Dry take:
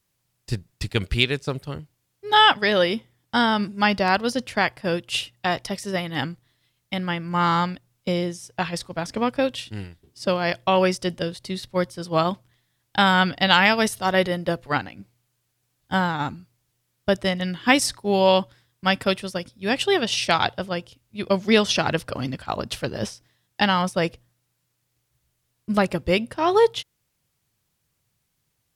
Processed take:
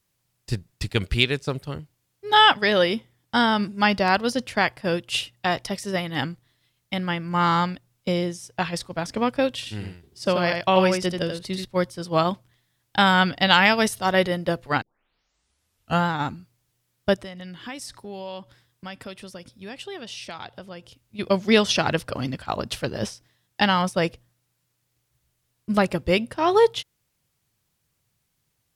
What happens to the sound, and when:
0:09.54–0:11.65: single-tap delay 85 ms −5.5 dB
0:14.82: tape start 1.26 s
0:17.14–0:21.19: downward compressor 3 to 1, threshold −38 dBFS

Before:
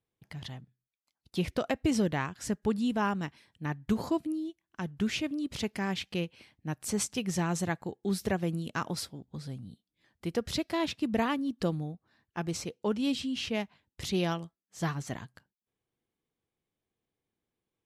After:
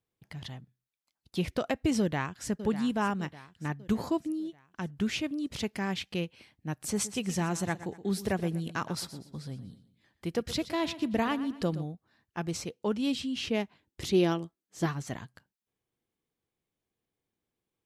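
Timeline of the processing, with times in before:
0:01.99–0:02.50: delay throw 600 ms, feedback 50%, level −12 dB
0:06.72–0:11.85: repeating echo 121 ms, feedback 36%, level −14.5 dB
0:13.43–0:14.86: parametric band 340 Hz +8.5 dB

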